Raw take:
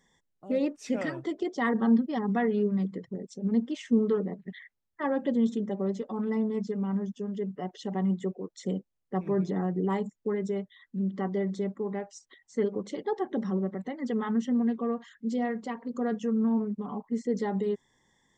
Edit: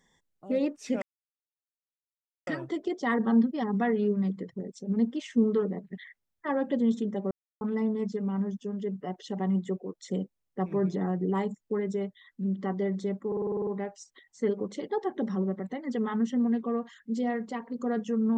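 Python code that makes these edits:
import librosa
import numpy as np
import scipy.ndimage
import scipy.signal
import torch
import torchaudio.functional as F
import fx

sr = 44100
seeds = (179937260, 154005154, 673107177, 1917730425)

y = fx.edit(x, sr, fx.insert_silence(at_s=1.02, length_s=1.45),
    fx.silence(start_s=5.86, length_s=0.3),
    fx.stutter(start_s=11.82, slice_s=0.05, count=9), tone=tone)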